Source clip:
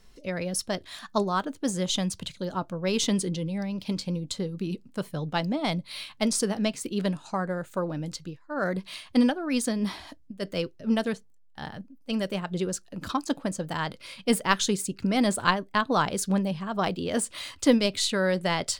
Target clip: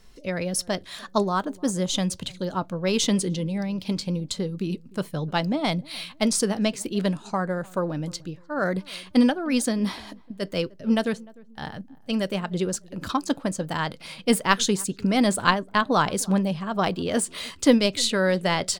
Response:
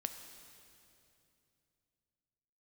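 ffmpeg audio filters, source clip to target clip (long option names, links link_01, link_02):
-filter_complex "[0:a]asettb=1/sr,asplit=3[link_01][link_02][link_03];[link_01]atrim=end=1.294[link_04];[link_02]atrim=start=1.29:end=1.95,asetpts=PTS-STARTPTS,afade=type=in:duration=0.004:curve=qsin,afade=type=out:start_time=0.656:duration=0.004:curve=qsin,equalizer=frequency=2800:width_type=o:width=1.7:gain=-4.5[link_05];[link_03]atrim=start=1.946[link_06];[link_04][link_05]acrossfade=duration=0.004:curve1=hsin:curve2=qsin[link_07];[link_07][link_06]acrossfade=duration=0.004:curve1=qsin:curve2=hsin,asplit=2[link_08][link_09];[link_09]adelay=301,lowpass=frequency=950:poles=1,volume=-22.5dB,asplit=2[link_10][link_11];[link_11]adelay=301,lowpass=frequency=950:poles=1,volume=0.36[link_12];[link_10][link_12]amix=inputs=2:normalize=0[link_13];[link_08][link_13]amix=inputs=2:normalize=0,volume=3dB"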